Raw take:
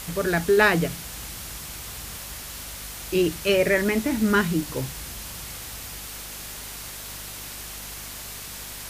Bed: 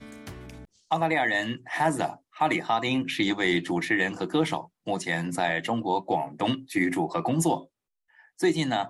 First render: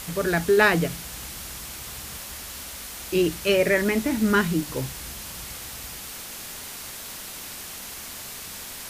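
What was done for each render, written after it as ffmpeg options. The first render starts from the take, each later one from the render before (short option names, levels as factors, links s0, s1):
-af "bandreject=f=50:t=h:w=4,bandreject=f=100:t=h:w=4,bandreject=f=150:t=h:w=4"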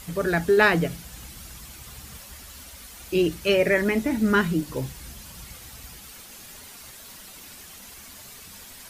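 -af "afftdn=nr=9:nf=-38"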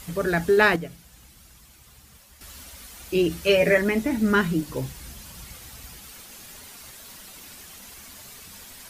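-filter_complex "[0:a]asettb=1/sr,asplit=3[s0][s1][s2];[s0]atrim=end=3.294[s3];[s1]atrim=start=3.29:end=3.78,asetpts=PTS-STARTPTS,afade=t=in:d=0.004:c=qsin,afade=t=out:st=0.486:d=0.004:c=qsin,asplit=2[s4][s5];[s5]adelay=12,volume=0.708[s6];[s4][s6]amix=inputs=2:normalize=0,atrim=end_sample=21609[s7];[s2]atrim=start=3.776[s8];[s3][s7]acrossfade=d=0.004:c1=hsin:c2=qsin[s9];[s9][s8]acrossfade=d=0.004:c1=qsin:c2=hsin,asplit=3[s10][s11][s12];[s10]atrim=end=0.762[s13];[s11]atrim=start=0.758:end=2.412,asetpts=PTS-STARTPTS,volume=0.335[s14];[s12]atrim=start=2.408[s15];[s13][s14]acrossfade=d=0.004:c1=hsin:c2=hsin[s16];[s16][s15]acrossfade=d=0.004:c1=hsin:c2=hsin"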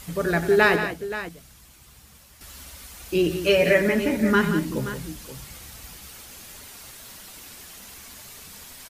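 -af "aecho=1:1:95|178|527:0.224|0.316|0.224"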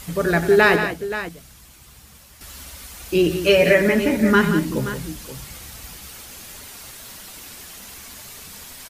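-af "volume=1.58,alimiter=limit=0.708:level=0:latency=1"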